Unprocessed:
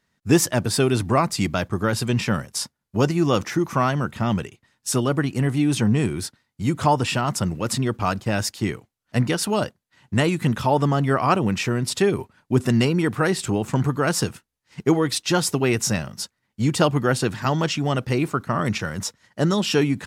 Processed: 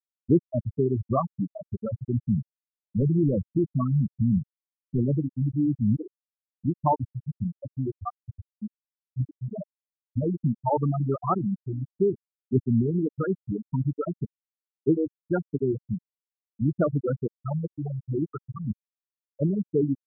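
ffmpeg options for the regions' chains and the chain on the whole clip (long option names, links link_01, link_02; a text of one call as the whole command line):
ffmpeg -i in.wav -filter_complex "[0:a]asettb=1/sr,asplit=3[link_01][link_02][link_03];[link_01]atrim=end=2.284[link_04];[link_02]atrim=start=2.28:end=5.18,asetpts=PTS-STARTPTS,afade=type=in:duration=0.004:curve=qsin,afade=type=out:start_time=2.896:duration=0.004:curve=qsin,highpass=78,lowshelf=frequency=370:gain=8,asoftclip=type=hard:threshold=-14.5dB[link_05];[link_03]atrim=start=5.176[link_06];[link_04][link_05]acrossfade=duration=0.004:curve1=hsin:curve2=qsin[link_07];[link_07][link_06]acrossfade=duration=0.004:curve1=qsin:curve2=hsin,asettb=1/sr,asplit=3[link_08][link_09][link_10];[link_08]atrim=end=5.964[link_11];[link_09]atrim=start=5.96:end=6.65,asetpts=PTS-STARTPTS,afade=type=in:duration=0.004:curve=qsin,afade=type=out:start_time=0.686:duration=0.004:curve=qsin,highpass=270,asplit=2[link_12][link_13];[link_13]adelay=25,volume=-8dB[link_14];[link_12][link_14]amix=inputs=2:normalize=0,atrim=end_sample=30429[link_15];[link_10]atrim=start=6.646[link_16];[link_11][link_15]acrossfade=duration=0.004:curve1=hsin:curve2=qsin[link_17];[link_17][link_16]acrossfade=duration=0.004:curve1=qsin:curve2=hsin,asettb=1/sr,asplit=3[link_18][link_19][link_20];[link_18]atrim=end=8.124[link_21];[link_19]atrim=start=8.12:end=10.23,asetpts=PTS-STARTPTS,afade=type=in:duration=0.004:curve=qsin,afade=type=out:start_time=2.106:duration=0.004:curve=qsin,aecho=1:1:242|484|726|968:0.562|0.202|0.0729|0.0262,atrim=end_sample=93051,flanger=delay=15.5:depth=7.2:speed=1.4[link_22];[link_20]atrim=start=10.226[link_23];[link_21][link_22]acrossfade=duration=0.004:curve1=hsin:curve2=qsin[link_24];[link_24][link_23]acrossfade=duration=0.004:curve1=qsin:curve2=hsin,afwtdn=0.0251,afftfilt=real='re*gte(hypot(re,im),0.562)':imag='im*gte(hypot(re,im),0.562)':win_size=1024:overlap=0.75,volume=-3dB" out.wav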